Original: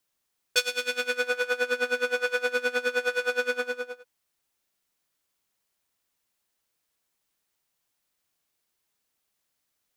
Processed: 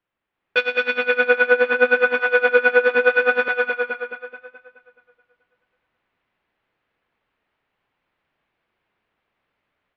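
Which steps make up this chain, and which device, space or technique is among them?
2.19–2.95 HPF 220 Hz 12 dB/oct; 3.48–3.9 HPF 980 Hz 6 dB/oct; high shelf 4700 Hz -4 dB; tape echo 0.214 s, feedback 53%, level -5.5 dB, low-pass 5500 Hz; action camera in a waterproof case (LPF 2700 Hz 24 dB/oct; AGC gain up to 8 dB; gain +3 dB; AAC 48 kbps 44100 Hz)

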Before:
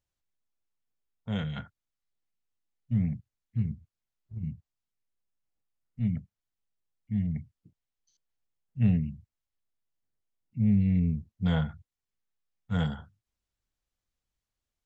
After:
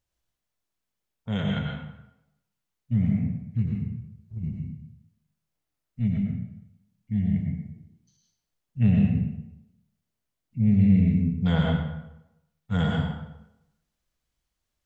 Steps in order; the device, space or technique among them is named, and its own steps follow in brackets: bathroom (reverb RT60 0.85 s, pre-delay 88 ms, DRR -1 dB); gain +3 dB

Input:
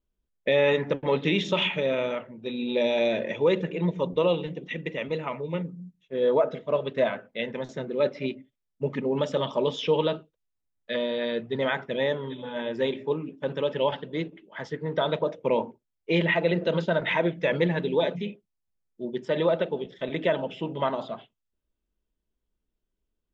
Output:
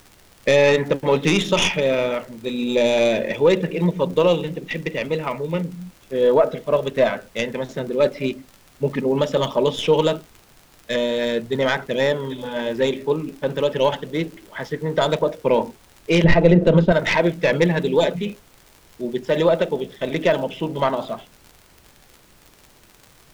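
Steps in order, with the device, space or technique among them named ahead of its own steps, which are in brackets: record under a worn stylus (tracing distortion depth 0.07 ms; crackle 72/s -39 dBFS; pink noise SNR 31 dB); 16.24–16.92 tilt -3 dB/oct; gain +6.5 dB

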